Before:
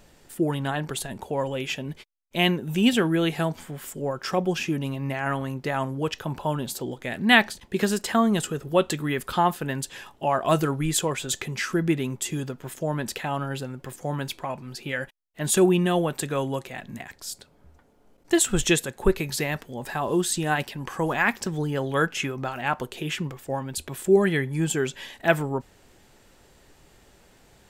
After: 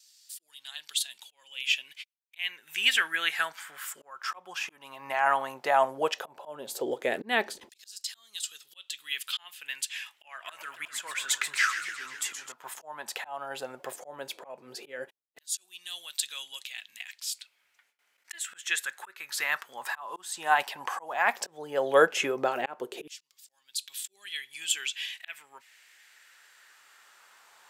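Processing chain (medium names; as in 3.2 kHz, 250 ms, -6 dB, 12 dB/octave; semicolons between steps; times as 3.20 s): gate with hold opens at -52 dBFS; bass shelf 110 Hz +12 dB; slow attack 471 ms; LFO high-pass saw down 0.13 Hz 370–5000 Hz; 10.24–12.52 s: modulated delay 128 ms, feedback 68%, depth 207 cents, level -9.5 dB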